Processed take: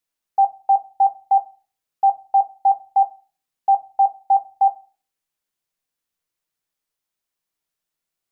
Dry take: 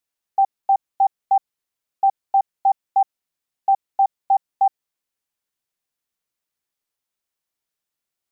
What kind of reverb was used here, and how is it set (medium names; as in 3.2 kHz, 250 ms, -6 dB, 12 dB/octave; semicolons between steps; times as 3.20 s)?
simulated room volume 200 m³, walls furnished, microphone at 0.58 m